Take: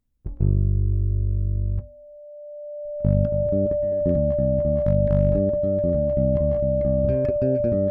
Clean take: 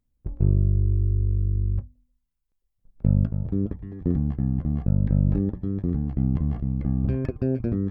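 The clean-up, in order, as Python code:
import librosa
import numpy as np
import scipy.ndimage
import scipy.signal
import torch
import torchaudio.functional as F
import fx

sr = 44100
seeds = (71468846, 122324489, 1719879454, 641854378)

y = fx.fix_declip(x, sr, threshold_db=-10.0)
y = fx.notch(y, sr, hz=590.0, q=30.0)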